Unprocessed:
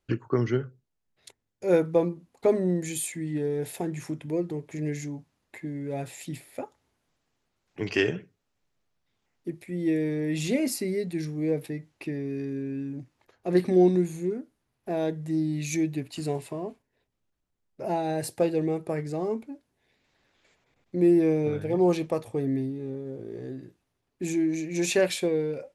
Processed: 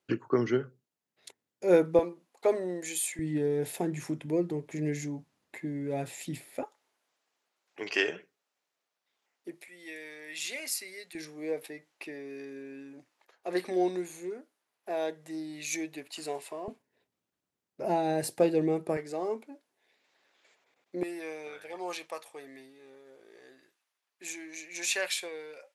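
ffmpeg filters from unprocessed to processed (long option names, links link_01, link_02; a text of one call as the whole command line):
ffmpeg -i in.wav -af "asetnsamples=nb_out_samples=441:pad=0,asendcmd='1.99 highpass f 490;3.19 highpass f 140;6.63 highpass f 520;9.68 highpass f 1300;11.15 highpass f 570;16.68 highpass f 170;18.97 highpass f 430;21.03 highpass f 1100',highpass=200" out.wav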